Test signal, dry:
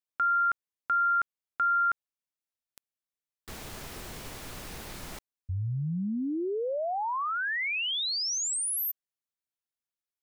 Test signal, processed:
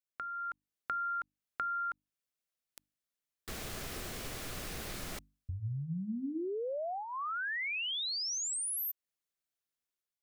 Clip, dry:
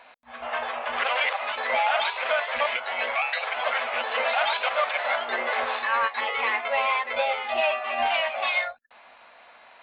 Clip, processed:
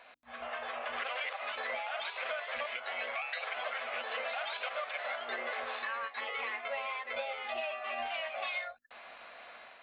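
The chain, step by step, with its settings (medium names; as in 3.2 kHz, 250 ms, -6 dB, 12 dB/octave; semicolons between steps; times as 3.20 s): compression 5:1, threshold -37 dBFS; peaking EQ 910 Hz -7.5 dB 0.25 oct; level rider gain up to 6 dB; hum notches 50/100/150/200/250/300 Hz; trim -4.5 dB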